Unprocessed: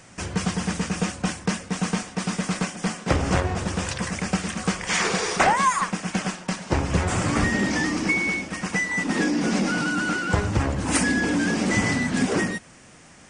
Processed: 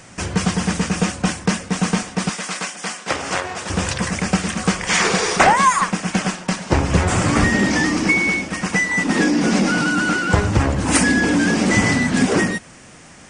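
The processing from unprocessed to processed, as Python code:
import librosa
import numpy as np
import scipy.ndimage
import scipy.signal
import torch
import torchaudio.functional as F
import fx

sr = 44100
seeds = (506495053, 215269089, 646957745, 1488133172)

y = fx.highpass(x, sr, hz=1000.0, slope=6, at=(2.29, 3.7))
y = F.gain(torch.from_numpy(y), 6.0).numpy()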